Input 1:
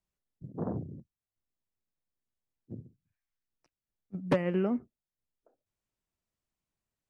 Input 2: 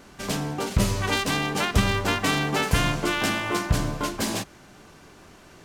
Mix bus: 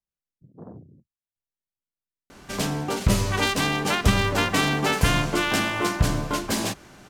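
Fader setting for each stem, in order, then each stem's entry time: -8.0 dB, +1.5 dB; 0.00 s, 2.30 s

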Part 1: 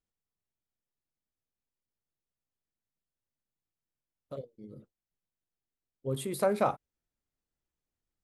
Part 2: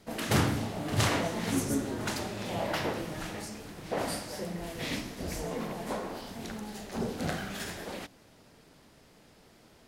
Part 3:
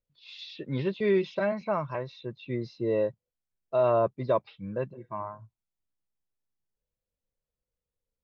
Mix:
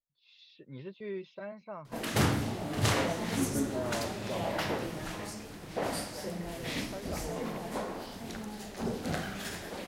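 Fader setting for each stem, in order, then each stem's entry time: -16.5 dB, -1.0 dB, -14.5 dB; 0.50 s, 1.85 s, 0.00 s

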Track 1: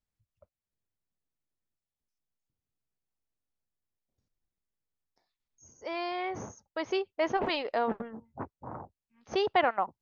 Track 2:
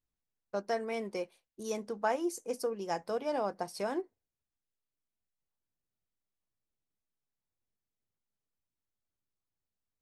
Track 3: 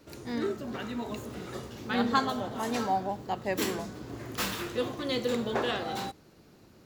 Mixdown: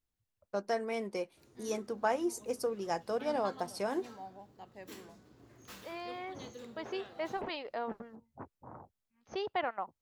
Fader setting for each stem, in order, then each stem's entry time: -8.5 dB, 0.0 dB, -19.0 dB; 0.00 s, 0.00 s, 1.30 s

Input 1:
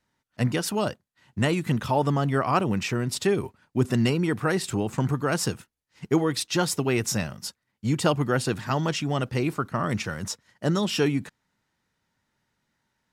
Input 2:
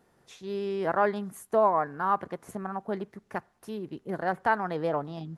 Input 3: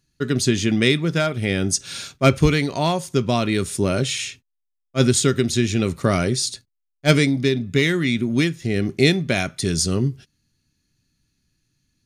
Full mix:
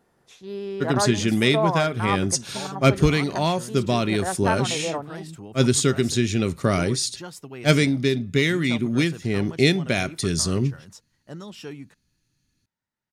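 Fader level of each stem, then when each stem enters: -14.0 dB, 0.0 dB, -2.0 dB; 0.65 s, 0.00 s, 0.60 s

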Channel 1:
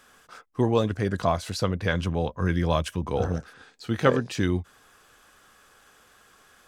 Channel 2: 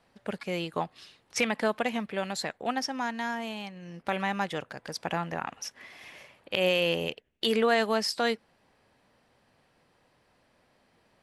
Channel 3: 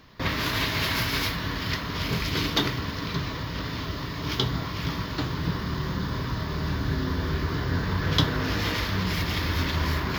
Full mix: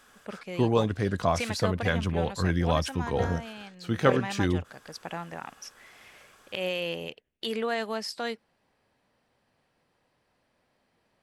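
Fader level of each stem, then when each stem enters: -1.5 dB, -5.5 dB, mute; 0.00 s, 0.00 s, mute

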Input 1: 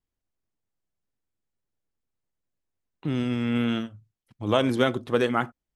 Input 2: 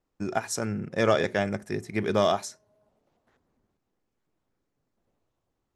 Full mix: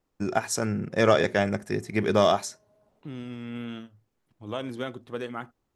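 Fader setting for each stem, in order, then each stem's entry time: -11.0 dB, +2.5 dB; 0.00 s, 0.00 s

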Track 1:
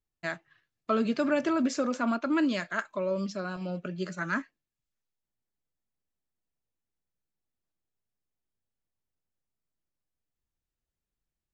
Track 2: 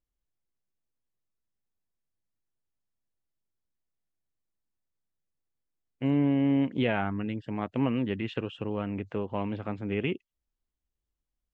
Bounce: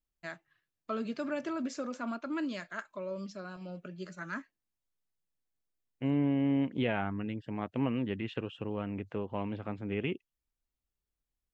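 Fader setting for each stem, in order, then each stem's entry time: -8.5 dB, -4.0 dB; 0.00 s, 0.00 s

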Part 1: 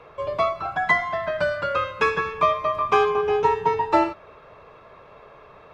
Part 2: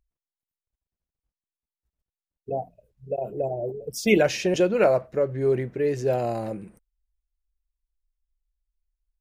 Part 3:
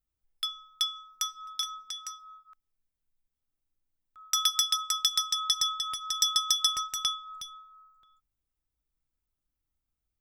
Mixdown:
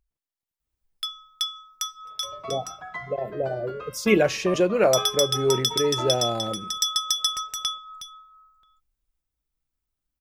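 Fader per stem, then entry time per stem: -16.0 dB, 0.0 dB, +1.5 dB; 2.05 s, 0.00 s, 0.60 s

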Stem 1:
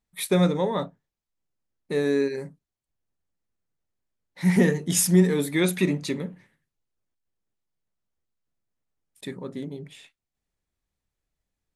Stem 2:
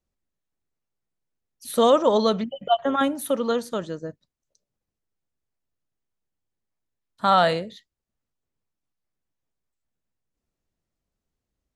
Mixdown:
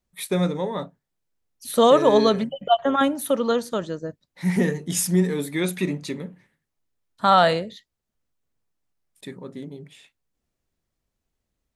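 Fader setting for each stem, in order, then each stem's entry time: -2.0 dB, +2.0 dB; 0.00 s, 0.00 s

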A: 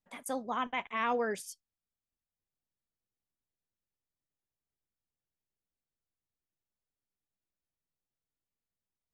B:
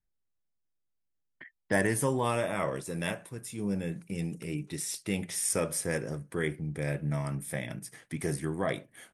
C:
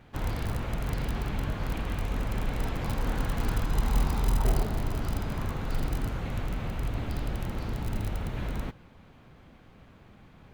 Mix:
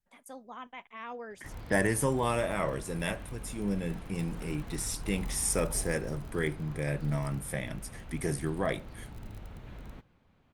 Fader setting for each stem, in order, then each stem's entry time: -10.5 dB, 0.0 dB, -13.0 dB; 0.00 s, 0.00 s, 1.30 s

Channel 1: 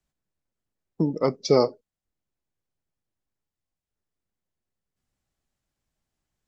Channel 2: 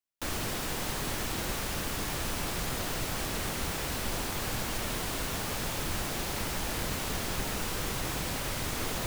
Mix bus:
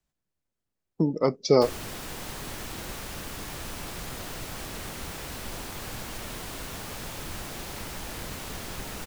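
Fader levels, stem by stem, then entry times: -0.5 dB, -4.0 dB; 0.00 s, 1.40 s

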